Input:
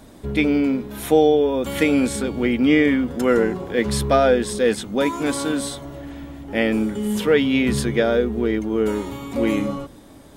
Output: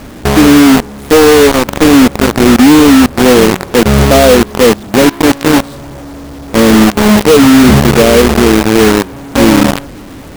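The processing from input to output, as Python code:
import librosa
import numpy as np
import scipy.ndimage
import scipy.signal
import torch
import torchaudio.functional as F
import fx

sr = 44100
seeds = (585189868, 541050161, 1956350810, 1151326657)

p1 = fx.lower_of_two(x, sr, delay_ms=0.43, at=(1.51, 1.94))
p2 = fx.env_lowpass_down(p1, sr, base_hz=1100.0, full_db=-12.5)
p3 = fx.tilt_shelf(p2, sr, db=9.0, hz=970.0)
p4 = np.clip(10.0 ** (16.5 / 20.0) * p3, -1.0, 1.0) / 10.0 ** (16.5 / 20.0)
p5 = p3 + F.gain(torch.from_numpy(p4), -10.0).numpy()
p6 = fx.quant_companded(p5, sr, bits=2)
y = F.gain(torch.from_numpy(p6), -1.0).numpy()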